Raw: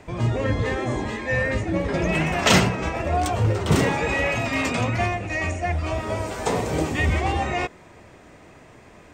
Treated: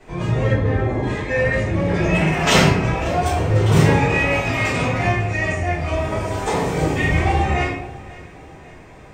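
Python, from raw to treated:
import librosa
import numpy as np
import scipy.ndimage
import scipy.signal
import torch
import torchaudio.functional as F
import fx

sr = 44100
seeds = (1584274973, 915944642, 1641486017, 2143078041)

y = fx.lowpass(x, sr, hz=1200.0, slope=6, at=(0.52, 1.03))
y = fx.echo_feedback(y, sr, ms=547, feedback_pct=48, wet_db=-20)
y = fx.room_shoebox(y, sr, seeds[0], volume_m3=120.0, walls='mixed', distance_m=3.4)
y = y * 10.0 ** (-9.0 / 20.0)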